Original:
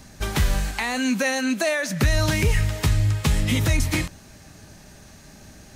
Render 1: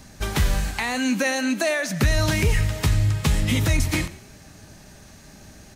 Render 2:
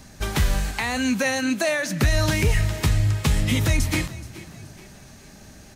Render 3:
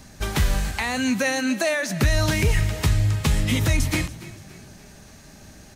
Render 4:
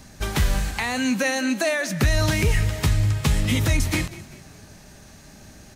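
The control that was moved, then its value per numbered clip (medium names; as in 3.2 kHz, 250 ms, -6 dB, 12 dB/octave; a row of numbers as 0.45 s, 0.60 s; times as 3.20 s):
frequency-shifting echo, time: 90 ms, 426 ms, 286 ms, 195 ms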